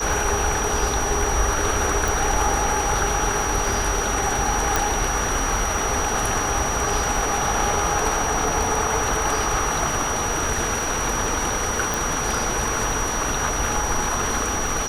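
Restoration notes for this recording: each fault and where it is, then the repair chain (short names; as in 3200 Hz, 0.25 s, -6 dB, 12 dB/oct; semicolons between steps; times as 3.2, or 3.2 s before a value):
crackle 22/s -29 dBFS
tone 5800 Hz -27 dBFS
2.08 pop
4.76 pop
11.94 pop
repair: de-click; notch 5800 Hz, Q 30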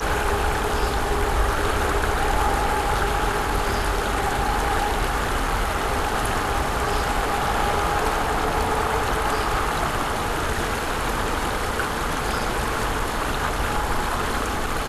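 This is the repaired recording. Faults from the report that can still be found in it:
2.08 pop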